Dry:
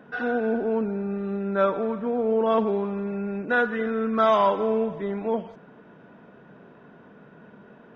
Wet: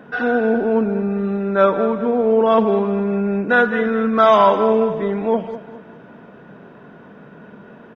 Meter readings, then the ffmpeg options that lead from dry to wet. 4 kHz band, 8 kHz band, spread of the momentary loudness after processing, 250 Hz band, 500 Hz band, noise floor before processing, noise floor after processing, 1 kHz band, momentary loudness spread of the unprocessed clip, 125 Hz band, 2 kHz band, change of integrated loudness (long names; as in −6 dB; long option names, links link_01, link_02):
+7.5 dB, can't be measured, 8 LU, +8.0 dB, +7.5 dB, −51 dBFS, −43 dBFS, +8.0 dB, 9 LU, +8.0 dB, +8.0 dB, +8.0 dB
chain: -af "aecho=1:1:205|410|615|820:0.224|0.0918|0.0376|0.0154,volume=7.5dB"